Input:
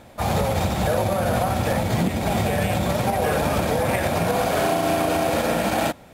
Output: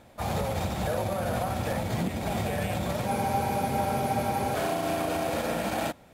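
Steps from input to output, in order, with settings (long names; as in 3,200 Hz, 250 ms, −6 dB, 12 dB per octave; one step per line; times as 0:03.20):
frozen spectrum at 0:03.09, 1.45 s
level −7.5 dB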